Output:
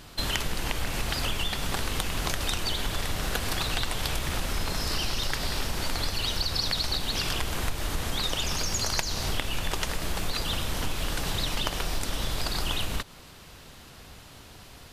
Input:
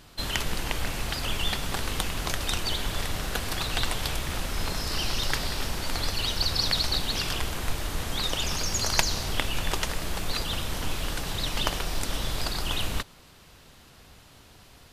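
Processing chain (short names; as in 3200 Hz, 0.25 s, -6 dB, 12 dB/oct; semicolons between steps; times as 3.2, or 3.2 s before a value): compressor 5:1, threshold -29 dBFS, peak gain reduction 12 dB; gain +4.5 dB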